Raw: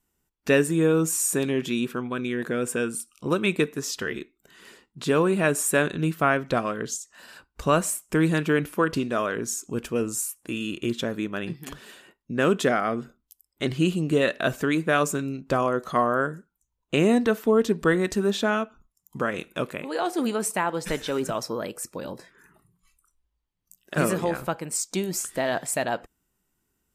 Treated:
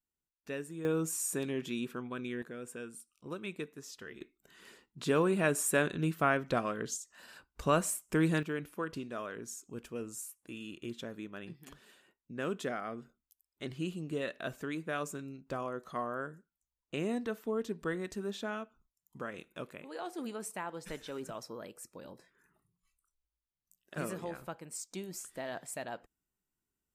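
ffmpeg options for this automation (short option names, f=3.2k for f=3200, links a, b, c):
-af "asetnsamples=n=441:p=0,asendcmd='0.85 volume volume -10.5dB;2.42 volume volume -17.5dB;4.21 volume volume -7dB;8.43 volume volume -14.5dB',volume=-20dB"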